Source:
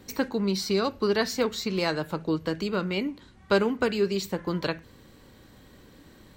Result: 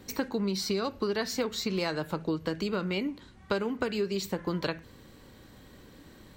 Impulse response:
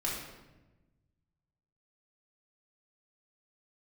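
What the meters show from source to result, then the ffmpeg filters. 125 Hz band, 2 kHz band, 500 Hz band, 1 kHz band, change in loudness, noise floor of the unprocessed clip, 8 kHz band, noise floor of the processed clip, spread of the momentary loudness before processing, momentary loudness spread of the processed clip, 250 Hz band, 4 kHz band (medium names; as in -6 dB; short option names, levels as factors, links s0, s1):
-3.0 dB, -4.5 dB, -5.0 dB, -4.5 dB, -4.0 dB, -54 dBFS, -1.5 dB, -54 dBFS, 6 LU, 3 LU, -3.5 dB, -3.0 dB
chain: -af "acompressor=threshold=0.0501:ratio=6"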